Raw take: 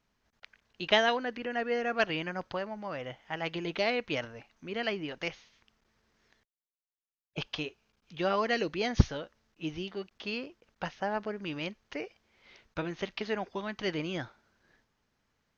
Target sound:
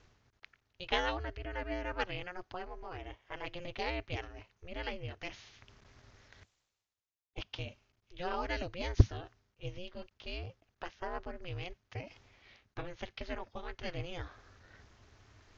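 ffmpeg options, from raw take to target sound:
ffmpeg -i in.wav -af "aeval=exprs='val(0)*sin(2*PI*180*n/s)':channel_layout=same,areverse,acompressor=mode=upward:threshold=-40dB:ratio=2.5,areverse,lowshelf=frequency=130:width_type=q:width=3:gain=6.5,aresample=16000,aresample=44100,volume=-4.5dB" out.wav

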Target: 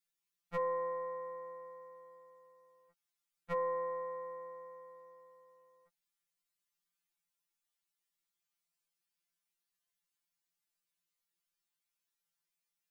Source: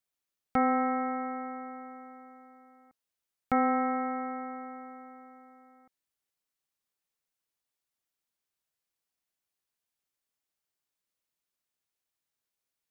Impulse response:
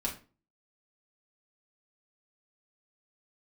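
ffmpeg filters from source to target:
-af "equalizer=frequency=450:width_type=o:width=1.8:gain=-8.5,aeval=exprs='0.178*(cos(1*acos(clip(val(0)/0.178,-1,1)))-cos(1*PI/2))+0.00224*(cos(2*acos(clip(val(0)/0.178,-1,1)))-cos(2*PI/2))':channel_layout=same,afftfilt=real='re*2.83*eq(mod(b,8),0)':imag='im*2.83*eq(mod(b,8),0)':win_size=2048:overlap=0.75,volume=1dB"

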